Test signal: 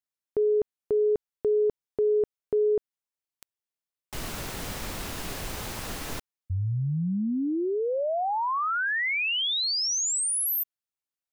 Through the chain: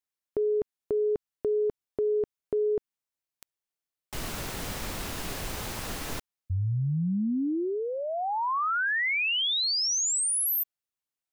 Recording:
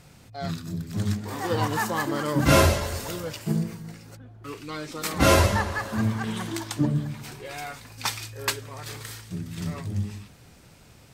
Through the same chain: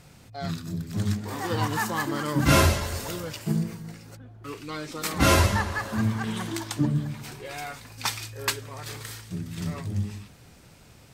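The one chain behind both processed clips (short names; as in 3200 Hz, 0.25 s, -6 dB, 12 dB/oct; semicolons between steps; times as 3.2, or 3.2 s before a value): dynamic EQ 550 Hz, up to -5 dB, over -36 dBFS, Q 1.5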